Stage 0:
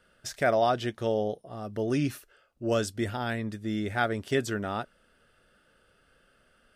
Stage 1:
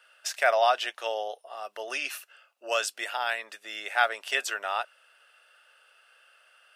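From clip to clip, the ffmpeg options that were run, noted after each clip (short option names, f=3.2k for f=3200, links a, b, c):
-af "highpass=f=680:w=0.5412,highpass=f=680:w=1.3066,equalizer=f=2.7k:t=o:w=0.21:g=9.5,volume=5dB"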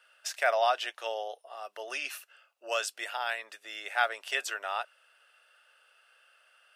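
-af "highpass=270,volume=-3.5dB"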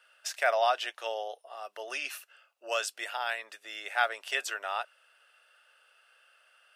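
-af anull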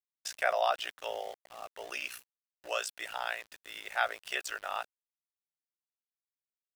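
-af "aeval=exprs='val(0)*gte(abs(val(0)),0.00596)':c=same,aeval=exprs='val(0)*sin(2*PI*30*n/s)':c=same"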